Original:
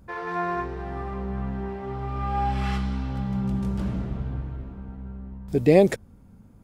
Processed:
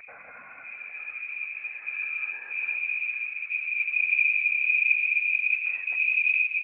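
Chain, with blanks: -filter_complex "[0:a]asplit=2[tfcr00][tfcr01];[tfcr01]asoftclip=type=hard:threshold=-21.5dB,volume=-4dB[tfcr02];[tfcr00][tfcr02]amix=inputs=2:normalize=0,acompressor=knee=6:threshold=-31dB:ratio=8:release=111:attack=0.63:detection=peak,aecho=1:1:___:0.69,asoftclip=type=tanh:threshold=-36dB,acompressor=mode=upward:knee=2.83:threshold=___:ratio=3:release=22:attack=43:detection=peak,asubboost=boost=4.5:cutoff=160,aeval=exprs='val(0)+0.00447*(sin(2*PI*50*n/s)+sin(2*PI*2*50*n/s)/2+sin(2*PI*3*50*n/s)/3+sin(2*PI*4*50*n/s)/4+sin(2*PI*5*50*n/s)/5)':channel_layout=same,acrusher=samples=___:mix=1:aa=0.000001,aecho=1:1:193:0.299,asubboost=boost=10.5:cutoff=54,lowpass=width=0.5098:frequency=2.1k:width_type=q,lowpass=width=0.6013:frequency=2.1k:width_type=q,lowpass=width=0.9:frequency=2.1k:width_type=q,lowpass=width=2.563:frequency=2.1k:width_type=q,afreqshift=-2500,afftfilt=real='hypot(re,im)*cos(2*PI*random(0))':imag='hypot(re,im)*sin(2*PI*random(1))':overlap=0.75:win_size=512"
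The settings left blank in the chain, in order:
3.6, -48dB, 12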